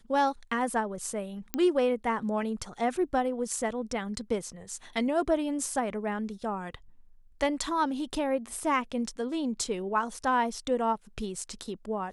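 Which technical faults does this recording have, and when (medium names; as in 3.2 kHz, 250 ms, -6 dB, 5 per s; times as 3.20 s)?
1.54 s: pop -14 dBFS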